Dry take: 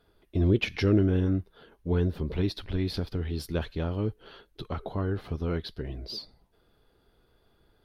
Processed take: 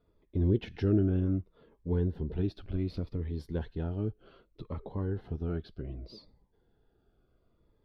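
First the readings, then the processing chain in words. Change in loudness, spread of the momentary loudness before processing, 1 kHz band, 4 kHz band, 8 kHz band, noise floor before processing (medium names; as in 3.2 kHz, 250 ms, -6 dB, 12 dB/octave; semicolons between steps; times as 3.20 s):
-3.5 dB, 14 LU, -8.5 dB, -14.5 dB, no reading, -67 dBFS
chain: low-pass 1.1 kHz 6 dB/octave; Shepard-style phaser falling 0.66 Hz; trim -3 dB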